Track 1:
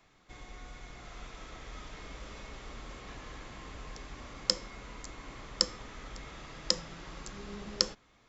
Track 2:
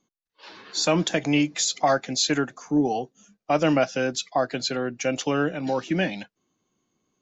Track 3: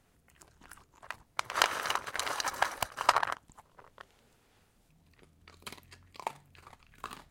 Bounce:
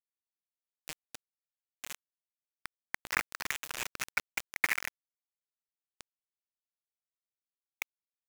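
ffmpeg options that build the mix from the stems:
-filter_complex "[0:a]volume=0.299,asplit=2[s0][s1];[s1]volume=0.133[s2];[1:a]volume=0.126[s3];[2:a]bandreject=f=2400:w=15,adelay=1550,volume=0.668[s4];[s2]aecho=0:1:68|136|204|272|340|408|476|544:1|0.55|0.303|0.166|0.0915|0.0503|0.0277|0.0152[s5];[s0][s3][s4][s5]amix=inputs=4:normalize=0,lowpass=f=2600:t=q:w=0.5098,lowpass=f=2600:t=q:w=0.6013,lowpass=f=2600:t=q:w=0.9,lowpass=f=2600:t=q:w=2.563,afreqshift=-3100,acrusher=bits=4:mix=0:aa=0.000001"

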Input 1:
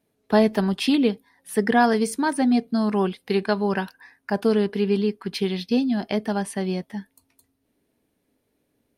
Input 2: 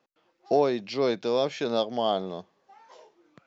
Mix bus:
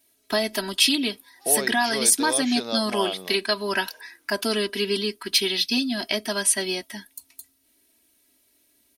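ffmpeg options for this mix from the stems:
-filter_complex "[0:a]highshelf=f=3100:g=9,aecho=1:1:3.1:0.97,alimiter=limit=0.282:level=0:latency=1:release=289,volume=1[s0];[1:a]adelay=950,volume=0.891[s1];[s0][s1]amix=inputs=2:normalize=0,tiltshelf=f=1400:g=-6.5"

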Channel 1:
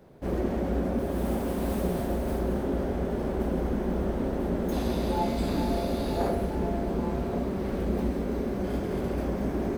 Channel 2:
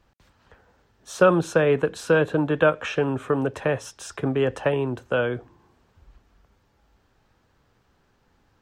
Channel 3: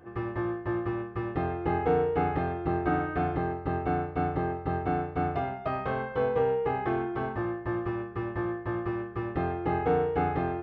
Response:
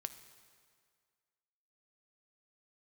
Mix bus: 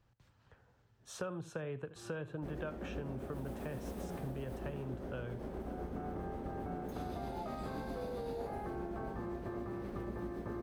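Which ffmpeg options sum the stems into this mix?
-filter_complex "[0:a]tremolo=f=7.7:d=0.36,adelay=2200,volume=0.631[s0];[1:a]equalizer=f=120:w=2.1:g=12.5,volume=0.266,asplit=3[s1][s2][s3];[s2]volume=0.133[s4];[2:a]alimiter=level_in=1.12:limit=0.0631:level=0:latency=1,volume=0.891,lowpass=1700,adelay=1800,volume=1.06[s5];[s3]apad=whole_len=547961[s6];[s5][s6]sidechaincompress=threshold=0.00355:ratio=8:attack=16:release=483[s7];[s4]aecho=0:1:77:1[s8];[s0][s1][s7][s8]amix=inputs=4:normalize=0,acompressor=threshold=0.00794:ratio=3"

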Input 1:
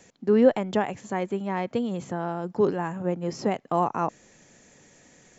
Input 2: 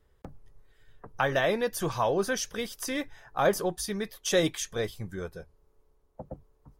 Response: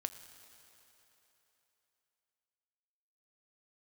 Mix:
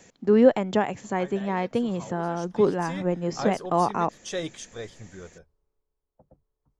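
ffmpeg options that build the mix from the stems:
-filter_complex "[0:a]volume=1.19[s0];[1:a]lowpass=f=8500:w=0.5412,lowpass=f=8500:w=1.3066,volume=0.473,afade=t=in:st=2.31:d=0.64:silence=0.298538,afade=t=out:st=5.26:d=0.6:silence=0.334965[s1];[s0][s1]amix=inputs=2:normalize=0"

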